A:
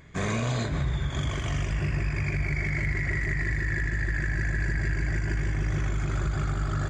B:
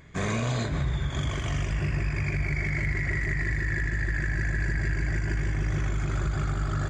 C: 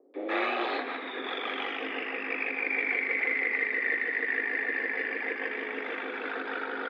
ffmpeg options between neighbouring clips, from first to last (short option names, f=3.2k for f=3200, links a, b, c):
-af anull
-filter_complex "[0:a]highpass=f=240:t=q:w=0.5412,highpass=f=240:t=q:w=1.307,lowpass=f=3.5k:t=q:w=0.5176,lowpass=f=3.5k:t=q:w=0.7071,lowpass=f=3.5k:t=q:w=1.932,afreqshift=120,acrossover=split=550[a][b];[b]adelay=140[c];[a][c]amix=inputs=2:normalize=0,volume=4dB"